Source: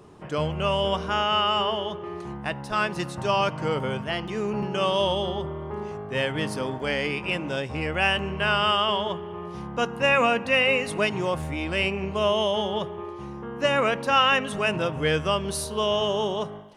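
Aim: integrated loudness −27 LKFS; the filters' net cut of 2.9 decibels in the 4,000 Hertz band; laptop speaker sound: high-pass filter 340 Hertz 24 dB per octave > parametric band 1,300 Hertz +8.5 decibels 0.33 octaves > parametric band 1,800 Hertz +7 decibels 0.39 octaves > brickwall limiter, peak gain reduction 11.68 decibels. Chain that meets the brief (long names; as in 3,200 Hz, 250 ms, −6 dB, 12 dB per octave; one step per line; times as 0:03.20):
high-pass filter 340 Hz 24 dB per octave
parametric band 1,300 Hz +8.5 dB 0.33 octaves
parametric band 1,800 Hz +7 dB 0.39 octaves
parametric band 4,000 Hz −6 dB
level −0.5 dB
brickwall limiter −16 dBFS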